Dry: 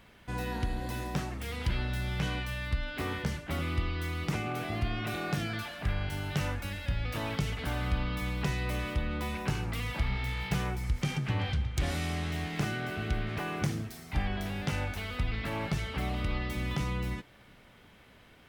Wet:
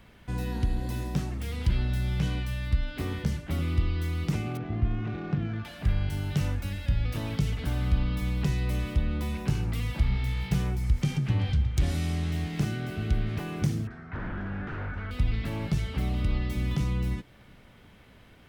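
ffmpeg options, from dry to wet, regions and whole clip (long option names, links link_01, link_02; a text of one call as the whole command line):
ffmpeg -i in.wav -filter_complex "[0:a]asettb=1/sr,asplit=3[link_01][link_02][link_03];[link_01]atrim=end=4.574[link_04];[link_02]atrim=start=4.57:end=5.65,asetpts=PTS-STARTPTS,afade=type=in:duration=0.004:curve=qsin,afade=type=out:start_time=1.076:duration=0.004:curve=qsin,equalizer=frequency=610:width=5.8:gain=-6,adynamicsmooth=sensitivity=4:basefreq=1100,lowpass=3700[link_05];[link_03]atrim=start=5.646[link_06];[link_04][link_05]acrossfade=duration=0.004:curve1=hsin:curve2=qsin[link_07];[link_07][link_06]acrossfade=duration=0.004:curve1=qsin:curve2=hsin,asettb=1/sr,asplit=3[link_08][link_09][link_10];[link_08]atrim=end=13.874[link_11];[link_09]atrim=start=13.87:end=15.11,asetpts=PTS-STARTPTS,afade=type=in:duration=0.004:curve=qsin,afade=type=out:start_time=1.236:duration=0.004:curve=qsin,aeval=exprs='0.0237*(abs(mod(val(0)/0.0237+3,4)-2)-1)':channel_layout=same,lowpass=frequency=1500:width_type=q:width=4.2[link_12];[link_10]atrim=start=15.106[link_13];[link_11][link_12]acrossfade=duration=0.004:curve1=hsin:curve2=qsin[link_14];[link_14][link_13]acrossfade=duration=0.004:curve1=qsin:curve2=hsin,lowshelf=frequency=280:gain=6.5,acrossover=split=440|3000[link_15][link_16][link_17];[link_16]acompressor=threshold=-52dB:ratio=1.5[link_18];[link_15][link_18][link_17]amix=inputs=3:normalize=0" out.wav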